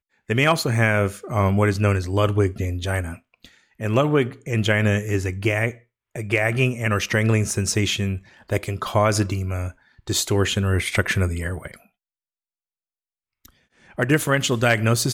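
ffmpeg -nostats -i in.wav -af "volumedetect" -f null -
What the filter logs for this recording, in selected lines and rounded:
mean_volume: -22.4 dB
max_volume: -4.9 dB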